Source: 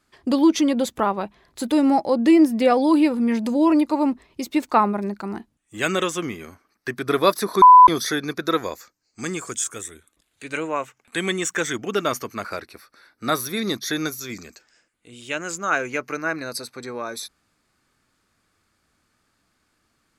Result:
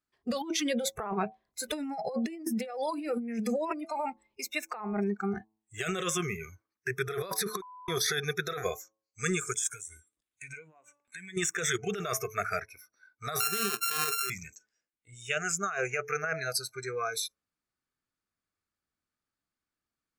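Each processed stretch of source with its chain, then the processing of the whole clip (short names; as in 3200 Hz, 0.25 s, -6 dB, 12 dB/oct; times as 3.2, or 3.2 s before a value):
9.74–11.37 de-hum 289.2 Hz, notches 36 + compressor 20:1, threshold -36 dBFS
13.4–14.3 sample sorter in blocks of 32 samples + HPF 200 Hz 24 dB/oct + high shelf 6600 Hz +9 dB
whole clip: de-hum 108.8 Hz, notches 10; spectral noise reduction 23 dB; negative-ratio compressor -28 dBFS, ratio -1; gain -5.5 dB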